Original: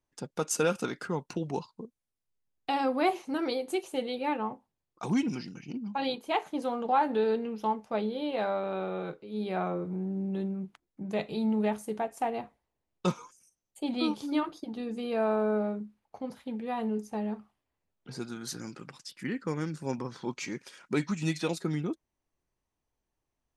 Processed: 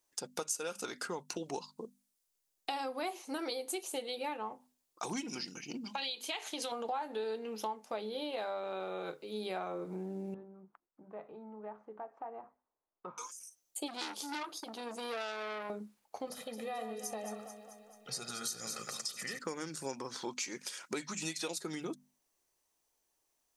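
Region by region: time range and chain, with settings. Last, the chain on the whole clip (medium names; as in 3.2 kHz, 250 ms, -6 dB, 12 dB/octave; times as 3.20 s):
5.84–6.72 s: frequency weighting D + compression 3:1, threshold -32 dBFS
10.34–13.18 s: four-pole ladder low-pass 1.5 kHz, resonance 40% + compression 2:1, threshold -50 dBFS
13.88–15.70 s: bass shelf 410 Hz -5.5 dB + transformer saturation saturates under 2.2 kHz
16.27–19.39 s: comb 1.6 ms, depth 77% + compression 4:1, threshold -38 dBFS + echo whose repeats swap between lows and highs 109 ms, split 2.1 kHz, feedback 76%, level -7 dB
whole clip: tone controls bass -14 dB, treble +11 dB; hum notches 50/100/150/200/250 Hz; compression 5:1, threshold -39 dBFS; trim +3 dB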